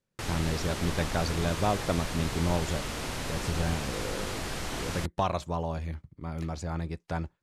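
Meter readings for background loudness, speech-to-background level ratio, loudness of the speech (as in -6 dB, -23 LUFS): -35.0 LUFS, 2.5 dB, -32.5 LUFS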